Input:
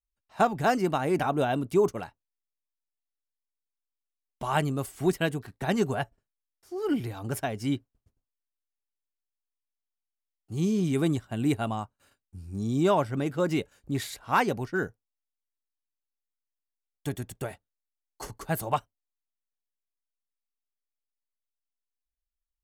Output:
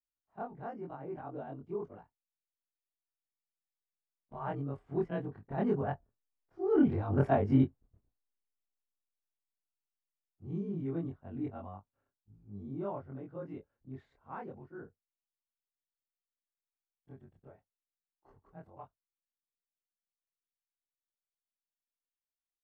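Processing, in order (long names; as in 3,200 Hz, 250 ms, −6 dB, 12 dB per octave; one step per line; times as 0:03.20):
every overlapping window played backwards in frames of 59 ms
source passing by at 0:07.29, 6 m/s, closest 3.4 metres
low-pass filter 1,100 Hz 12 dB per octave
level +8 dB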